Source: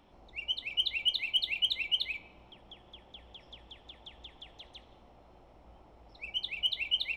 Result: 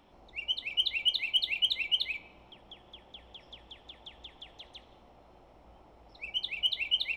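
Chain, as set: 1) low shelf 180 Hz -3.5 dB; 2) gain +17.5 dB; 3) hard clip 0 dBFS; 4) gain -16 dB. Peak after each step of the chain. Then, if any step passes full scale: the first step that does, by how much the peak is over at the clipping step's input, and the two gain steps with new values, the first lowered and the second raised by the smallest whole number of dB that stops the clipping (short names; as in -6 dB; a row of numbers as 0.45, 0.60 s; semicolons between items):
-19.5, -2.0, -2.0, -18.0 dBFS; no overload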